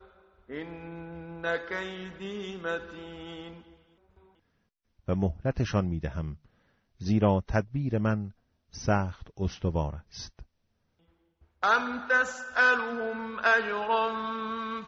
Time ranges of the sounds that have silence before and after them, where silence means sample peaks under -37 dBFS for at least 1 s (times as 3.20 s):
5.08–10.42 s